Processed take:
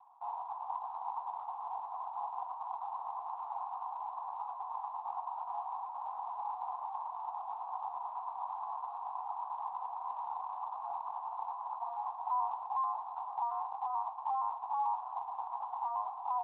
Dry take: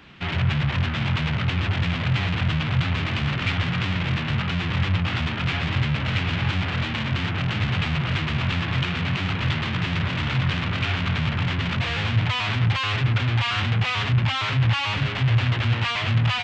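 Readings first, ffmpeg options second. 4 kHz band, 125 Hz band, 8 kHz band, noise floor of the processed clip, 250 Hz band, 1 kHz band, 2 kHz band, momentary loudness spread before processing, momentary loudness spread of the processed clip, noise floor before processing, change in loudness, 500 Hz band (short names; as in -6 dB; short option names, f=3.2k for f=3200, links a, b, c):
under -40 dB, under -40 dB, n/a, -45 dBFS, under -40 dB, -2.5 dB, under -40 dB, 3 LU, 6 LU, -27 dBFS, -15.5 dB, -15.5 dB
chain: -af "asuperpass=centerf=880:order=8:qfactor=2.7,volume=1.5dB" -ar 16000 -c:a libspeex -b:a 34k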